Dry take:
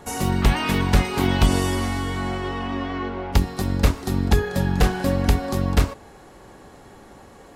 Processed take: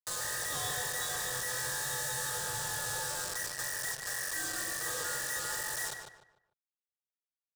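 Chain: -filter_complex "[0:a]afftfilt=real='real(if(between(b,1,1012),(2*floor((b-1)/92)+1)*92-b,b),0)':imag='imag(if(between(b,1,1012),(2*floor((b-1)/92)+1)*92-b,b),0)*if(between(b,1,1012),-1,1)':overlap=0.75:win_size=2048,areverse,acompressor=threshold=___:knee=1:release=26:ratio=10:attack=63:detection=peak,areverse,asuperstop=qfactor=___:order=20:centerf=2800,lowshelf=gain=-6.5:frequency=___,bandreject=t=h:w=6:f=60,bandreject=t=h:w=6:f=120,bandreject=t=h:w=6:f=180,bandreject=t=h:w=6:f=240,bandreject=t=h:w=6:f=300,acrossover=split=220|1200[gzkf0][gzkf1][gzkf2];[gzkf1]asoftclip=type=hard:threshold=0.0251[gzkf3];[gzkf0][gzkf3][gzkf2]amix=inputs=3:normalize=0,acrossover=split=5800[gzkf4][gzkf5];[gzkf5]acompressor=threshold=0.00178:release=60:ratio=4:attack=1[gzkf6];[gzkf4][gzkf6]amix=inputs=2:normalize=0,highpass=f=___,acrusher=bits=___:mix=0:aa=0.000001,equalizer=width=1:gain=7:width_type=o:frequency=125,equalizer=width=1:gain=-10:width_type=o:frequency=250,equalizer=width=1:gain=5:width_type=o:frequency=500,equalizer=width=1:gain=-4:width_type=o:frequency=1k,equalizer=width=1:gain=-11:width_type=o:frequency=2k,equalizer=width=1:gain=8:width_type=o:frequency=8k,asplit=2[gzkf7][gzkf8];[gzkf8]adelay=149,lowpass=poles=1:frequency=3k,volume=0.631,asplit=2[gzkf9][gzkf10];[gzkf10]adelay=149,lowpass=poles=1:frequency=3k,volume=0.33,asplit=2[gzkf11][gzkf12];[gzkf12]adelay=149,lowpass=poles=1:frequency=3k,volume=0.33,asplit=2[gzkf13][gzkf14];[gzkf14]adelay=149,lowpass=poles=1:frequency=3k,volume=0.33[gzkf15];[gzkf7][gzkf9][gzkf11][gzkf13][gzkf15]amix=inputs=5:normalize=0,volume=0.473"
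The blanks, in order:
0.0316, 3.9, 320, 97, 4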